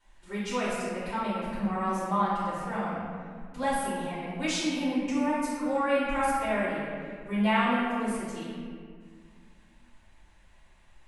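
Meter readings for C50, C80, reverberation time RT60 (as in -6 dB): -2.5 dB, 0.0 dB, 1.9 s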